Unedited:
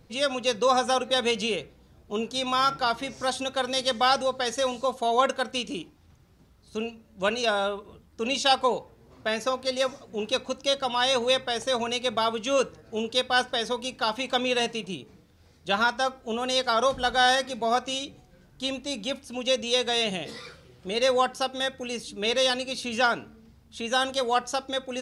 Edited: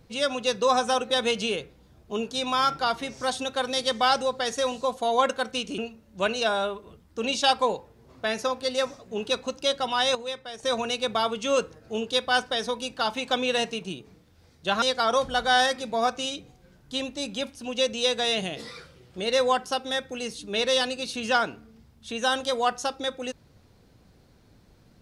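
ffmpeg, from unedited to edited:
-filter_complex "[0:a]asplit=5[a][b][c][d][e];[a]atrim=end=5.782[f];[b]atrim=start=6.798:end=11.172[g];[c]atrim=start=11.168:end=11.652,asetpts=PTS-STARTPTS,volume=-10dB[h];[d]atrim=start=11.648:end=15.842[i];[e]atrim=start=16.508[j];[f][g]acrossfade=d=0.004:c1=hsin:c2=hsin[k];[k][h]acrossfade=d=0.004:c1=hsin:c2=hsin[l];[l][i]acrossfade=d=0.004:c1=hsin:c2=hsin[m];[m][j]acrossfade=d=0.004:c1=hsin:c2=hsin"

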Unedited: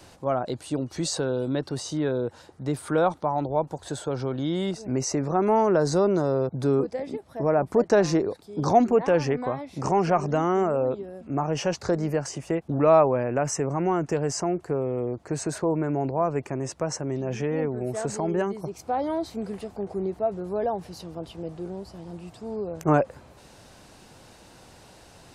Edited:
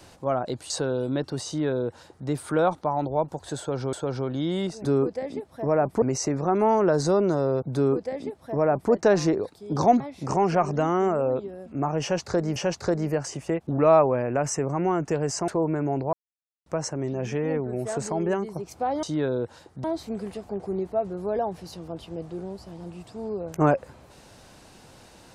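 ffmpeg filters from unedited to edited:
-filter_complex "[0:a]asplit=12[a][b][c][d][e][f][g][h][i][j][k][l];[a]atrim=end=0.702[m];[b]atrim=start=1.088:end=4.322[n];[c]atrim=start=3.968:end=4.892[o];[d]atrim=start=6.618:end=7.792[p];[e]atrim=start=4.888:end=8.872[q];[f]atrim=start=9.548:end=12.112[r];[g]atrim=start=11.568:end=14.492[s];[h]atrim=start=15.558:end=16.21,asetpts=PTS-STARTPTS,afade=t=out:st=0.648:d=0.004:c=hsin[t];[i]atrim=start=16.21:end=16.74,asetpts=PTS-STARTPTS,volume=0[u];[j]atrim=start=16.74:end=19.112,asetpts=PTS-STARTPTS,afade=t=in:d=0.004:c=hsin[v];[k]atrim=start=1.858:end=2.672[w];[l]atrim=start=19.108[x];[m][n]acrossfade=d=0.004:c1=hsin:c2=hsin[y];[y][o]acrossfade=d=0.004:c1=hsin:c2=hsin[z];[z][p]acrossfade=d=0.004:c1=hsin:c2=hsin[aa];[aa][q]acrossfade=d=0.004:c1=hsin:c2=hsin[ab];[ab][r]acrossfade=d=0.004:c1=hsin:c2=hsin[ac];[ac][s]acrossfade=d=0.004:c1=hsin:c2=hsin[ad];[t][u][v]concat=n=3:v=0:a=1[ae];[ad][ae]acrossfade=d=0.004:c1=hsin:c2=hsin[af];[af][w]acrossfade=d=0.004:c1=hsin:c2=hsin[ag];[ag][x]acrossfade=d=0.004:c1=hsin:c2=hsin"

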